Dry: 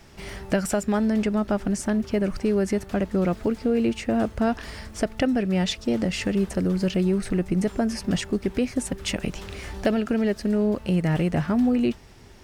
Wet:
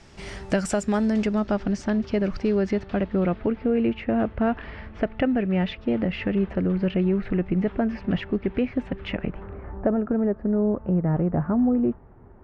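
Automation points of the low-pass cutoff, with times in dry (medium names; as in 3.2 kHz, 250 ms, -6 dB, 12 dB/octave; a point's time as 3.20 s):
low-pass 24 dB/octave
1.01 s 8.7 kHz
1.64 s 5.2 kHz
2.42 s 5.2 kHz
3.58 s 2.8 kHz
9.05 s 2.8 kHz
9.58 s 1.3 kHz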